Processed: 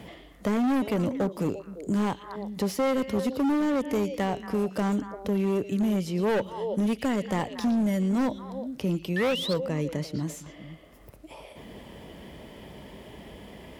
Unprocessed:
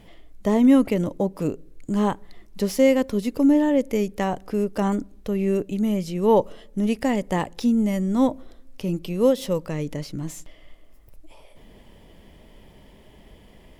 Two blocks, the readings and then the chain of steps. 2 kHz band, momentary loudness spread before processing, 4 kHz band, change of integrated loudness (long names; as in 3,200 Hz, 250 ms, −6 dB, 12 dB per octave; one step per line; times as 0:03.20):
−0.5 dB, 12 LU, +1.5 dB, −5.0 dB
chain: high-pass filter 47 Hz 24 dB per octave
echo through a band-pass that steps 115 ms, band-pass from 3,600 Hz, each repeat −1.4 octaves, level −7 dB
sound drawn into the spectrogram rise, 0:09.16–0:09.54, 1,700–4,600 Hz −28 dBFS
gain into a clipping stage and back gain 19.5 dB
multiband upward and downward compressor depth 40%
level −2 dB